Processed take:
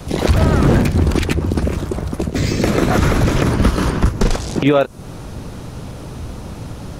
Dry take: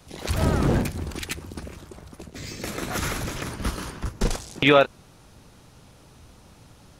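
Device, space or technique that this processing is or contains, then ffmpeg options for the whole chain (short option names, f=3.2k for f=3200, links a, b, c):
mastering chain: -filter_complex "[0:a]equalizer=f=820:t=o:w=0.21:g=-2,acrossover=split=1100|6300[a][b][c];[a]acompressor=threshold=-29dB:ratio=4[d];[b]acompressor=threshold=-37dB:ratio=4[e];[c]acompressor=threshold=-49dB:ratio=4[f];[d][e][f]amix=inputs=3:normalize=0,acompressor=threshold=-35dB:ratio=1.5,tiltshelf=f=1.1k:g=4.5,alimiter=level_in=19.5dB:limit=-1dB:release=50:level=0:latency=1,volume=-2dB"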